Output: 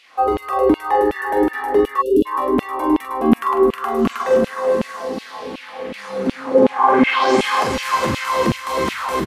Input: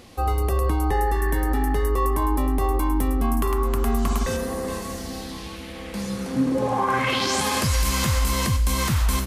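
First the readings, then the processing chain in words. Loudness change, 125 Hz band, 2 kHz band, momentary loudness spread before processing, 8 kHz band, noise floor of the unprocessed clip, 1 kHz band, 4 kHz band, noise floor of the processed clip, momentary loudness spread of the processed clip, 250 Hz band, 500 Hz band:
+5.5 dB, −8.5 dB, +5.5 dB, 10 LU, −7.0 dB, −36 dBFS, +7.5 dB, +0.5 dB, −38 dBFS, 13 LU, +6.5 dB, +11.0 dB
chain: spectral tilt −2 dB per octave
multi-tap delay 44/314/628 ms −6/−8/−17 dB
auto-filter high-pass saw down 2.7 Hz 230–3,000 Hz
time-frequency box erased 0:02.01–0:02.26, 560–2,600 Hz
high-shelf EQ 4,400 Hz −10.5 dB
level +5 dB

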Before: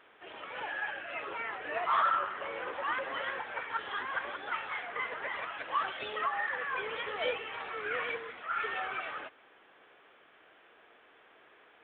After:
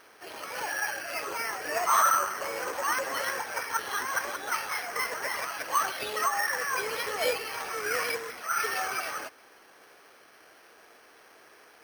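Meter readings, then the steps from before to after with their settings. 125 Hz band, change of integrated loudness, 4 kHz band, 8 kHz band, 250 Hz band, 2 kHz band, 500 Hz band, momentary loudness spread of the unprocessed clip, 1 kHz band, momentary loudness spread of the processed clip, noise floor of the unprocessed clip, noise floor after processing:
+5.0 dB, +5.5 dB, +6.5 dB, can't be measured, +5.0 dB, +4.0 dB, +5.0 dB, 7 LU, +4.5 dB, 7 LU, −61 dBFS, −56 dBFS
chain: bad sample-rate conversion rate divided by 6×, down none, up hold
level +5 dB

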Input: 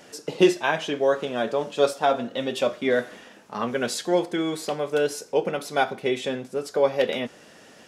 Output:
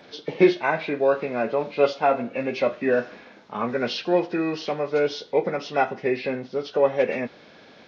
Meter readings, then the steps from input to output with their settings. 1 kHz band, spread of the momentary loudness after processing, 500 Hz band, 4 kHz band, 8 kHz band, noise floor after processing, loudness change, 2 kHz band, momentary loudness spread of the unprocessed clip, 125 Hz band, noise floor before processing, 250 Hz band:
+1.0 dB, 8 LU, +1.0 dB, −3.5 dB, below −10 dB, −50 dBFS, +1.0 dB, +0.5 dB, 8 LU, +1.0 dB, −50 dBFS, +1.0 dB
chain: hearing-aid frequency compression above 1,400 Hz 1.5 to 1
level +1 dB

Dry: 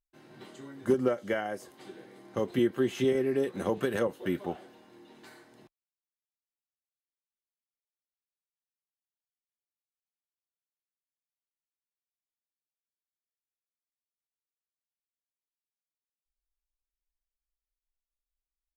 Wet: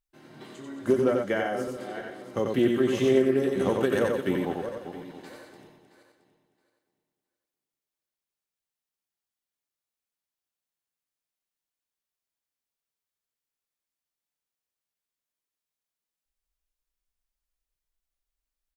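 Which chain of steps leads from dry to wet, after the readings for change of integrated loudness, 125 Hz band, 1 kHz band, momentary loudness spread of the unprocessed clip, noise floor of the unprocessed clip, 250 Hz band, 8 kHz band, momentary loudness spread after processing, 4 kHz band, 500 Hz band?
+4.0 dB, +4.5 dB, +5.0 dB, 20 LU, below −85 dBFS, +5.0 dB, +4.0 dB, 19 LU, +4.5 dB, +5.0 dB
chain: feedback delay that plays each chunk backwards 335 ms, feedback 42%, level −9 dB
single-tap delay 91 ms −3.5 dB
highs frequency-modulated by the lows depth 0.11 ms
level +2.5 dB

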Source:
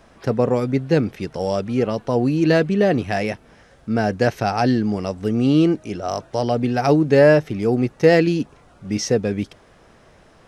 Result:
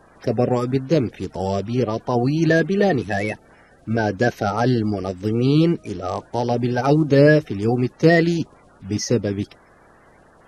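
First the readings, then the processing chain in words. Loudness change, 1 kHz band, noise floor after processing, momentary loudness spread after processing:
−0.5 dB, −0.5 dB, −52 dBFS, 12 LU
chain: spectral magnitudes quantised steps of 30 dB

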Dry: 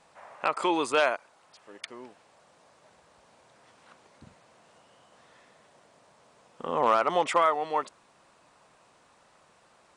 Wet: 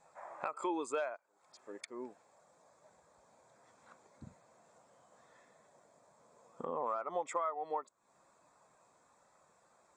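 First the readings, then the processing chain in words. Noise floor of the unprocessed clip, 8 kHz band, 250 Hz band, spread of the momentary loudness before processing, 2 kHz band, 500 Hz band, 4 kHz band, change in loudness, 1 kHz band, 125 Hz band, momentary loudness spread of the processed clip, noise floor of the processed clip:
−62 dBFS, −8.5 dB, −9.5 dB, 19 LU, −16.0 dB, −11.0 dB, −20.0 dB, −13.0 dB, −12.0 dB, −11.0 dB, 21 LU, −71 dBFS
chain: parametric band 7,300 Hz +9.5 dB 0.49 octaves
notch filter 2,900 Hz, Q 5.9
downward compressor 4 to 1, threshold −42 dBFS, peak gain reduction 19.5 dB
on a send: backwards echo 394 ms −23.5 dB
on the sum: every bin expanded away from the loudest bin 1.5 to 1
level +1.5 dB

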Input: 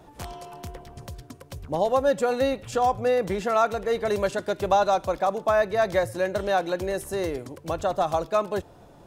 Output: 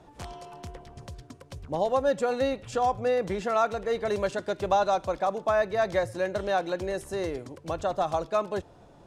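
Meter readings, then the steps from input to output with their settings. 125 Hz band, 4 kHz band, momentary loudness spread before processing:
−3.0 dB, −3.0 dB, 18 LU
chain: low-pass filter 8,700 Hz 12 dB per octave
level −3 dB

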